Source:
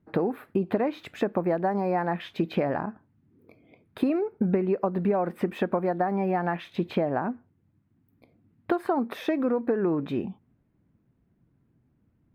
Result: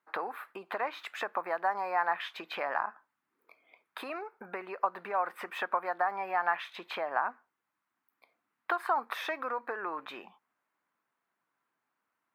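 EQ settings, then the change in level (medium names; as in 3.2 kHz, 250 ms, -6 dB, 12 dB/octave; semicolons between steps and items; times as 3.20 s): resonant high-pass 1.1 kHz, resonance Q 1.9; 0.0 dB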